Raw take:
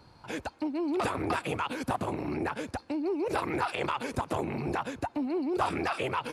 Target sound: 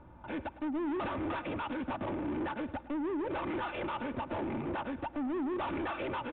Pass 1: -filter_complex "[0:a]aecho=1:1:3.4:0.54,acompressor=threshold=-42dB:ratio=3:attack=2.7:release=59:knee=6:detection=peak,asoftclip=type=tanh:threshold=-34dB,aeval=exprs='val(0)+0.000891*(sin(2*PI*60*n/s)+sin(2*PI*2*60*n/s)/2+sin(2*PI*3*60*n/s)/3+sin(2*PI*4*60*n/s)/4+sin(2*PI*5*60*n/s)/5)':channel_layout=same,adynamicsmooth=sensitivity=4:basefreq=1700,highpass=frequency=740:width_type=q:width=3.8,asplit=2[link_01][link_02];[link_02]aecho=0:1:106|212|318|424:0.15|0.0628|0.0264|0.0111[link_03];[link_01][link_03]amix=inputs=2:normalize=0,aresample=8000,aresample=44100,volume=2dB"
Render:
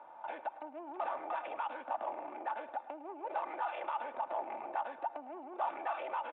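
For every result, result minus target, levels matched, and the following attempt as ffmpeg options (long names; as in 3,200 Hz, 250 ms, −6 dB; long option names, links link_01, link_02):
downward compressor: peak gain reduction +15 dB; 1,000 Hz band +6.0 dB
-filter_complex "[0:a]aecho=1:1:3.4:0.54,asoftclip=type=tanh:threshold=-34dB,aeval=exprs='val(0)+0.000891*(sin(2*PI*60*n/s)+sin(2*PI*2*60*n/s)/2+sin(2*PI*3*60*n/s)/3+sin(2*PI*4*60*n/s)/4+sin(2*PI*5*60*n/s)/5)':channel_layout=same,adynamicsmooth=sensitivity=4:basefreq=1700,highpass=frequency=740:width_type=q:width=3.8,asplit=2[link_01][link_02];[link_02]aecho=0:1:106|212|318|424:0.15|0.0628|0.0264|0.0111[link_03];[link_01][link_03]amix=inputs=2:normalize=0,aresample=8000,aresample=44100,volume=2dB"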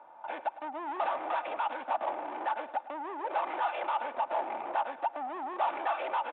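1,000 Hz band +6.0 dB
-filter_complex "[0:a]aecho=1:1:3.4:0.54,asoftclip=type=tanh:threshold=-34dB,aeval=exprs='val(0)+0.000891*(sin(2*PI*60*n/s)+sin(2*PI*2*60*n/s)/2+sin(2*PI*3*60*n/s)/3+sin(2*PI*4*60*n/s)/4+sin(2*PI*5*60*n/s)/5)':channel_layout=same,adynamicsmooth=sensitivity=4:basefreq=1700,asplit=2[link_01][link_02];[link_02]aecho=0:1:106|212|318|424:0.15|0.0628|0.0264|0.0111[link_03];[link_01][link_03]amix=inputs=2:normalize=0,aresample=8000,aresample=44100,volume=2dB"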